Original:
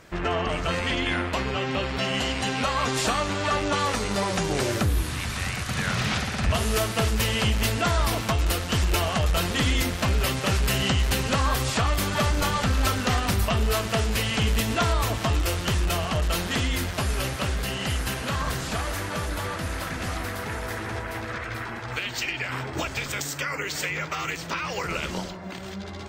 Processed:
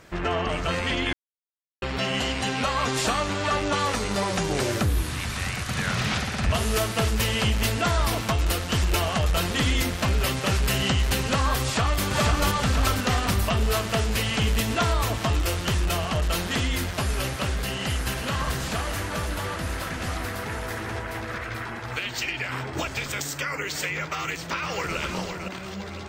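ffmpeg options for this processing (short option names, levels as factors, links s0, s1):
-filter_complex "[0:a]asplit=2[s0][s1];[s1]afade=t=in:st=11.61:d=0.01,afade=t=out:st=12.02:d=0.01,aecho=0:1:490|980|1470|1960|2450|2940|3430|3920|4410:0.707946|0.424767|0.25486|0.152916|0.0917498|0.0550499|0.0330299|0.019818|0.0118908[s2];[s0][s2]amix=inputs=2:normalize=0,asplit=2[s3][s4];[s4]afade=t=in:st=17.51:d=0.01,afade=t=out:st=18.26:d=0.01,aecho=0:1:540|1080|1620|2160|2700|3240|3780|4320|4860|5400|5940|6480:0.316228|0.237171|0.177878|0.133409|0.100056|0.0750423|0.0562817|0.0422113|0.0316585|0.0237439|0.0178079|0.0133559[s5];[s3][s5]amix=inputs=2:normalize=0,asplit=2[s6][s7];[s7]afade=t=in:st=23.99:d=0.01,afade=t=out:st=24.97:d=0.01,aecho=0:1:510|1020|1530|2040|2550:0.446684|0.201008|0.0904534|0.040704|0.0183168[s8];[s6][s8]amix=inputs=2:normalize=0,asplit=3[s9][s10][s11];[s9]atrim=end=1.13,asetpts=PTS-STARTPTS,afade=t=out:st=1.126:d=0.004:c=hsin[s12];[s10]atrim=start=1.13:end=1.82,asetpts=PTS-STARTPTS,volume=0[s13];[s11]atrim=start=1.82,asetpts=PTS-STARTPTS,afade=t=in:d=0.004:c=hsin[s14];[s12][s13][s14]concat=n=3:v=0:a=1"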